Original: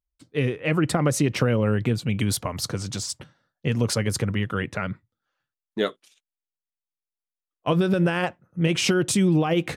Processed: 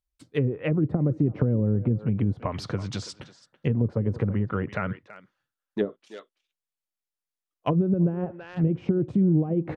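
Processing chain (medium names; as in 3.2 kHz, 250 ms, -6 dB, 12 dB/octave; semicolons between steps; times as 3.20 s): speakerphone echo 330 ms, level -16 dB; low-pass that closes with the level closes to 350 Hz, closed at -18.5 dBFS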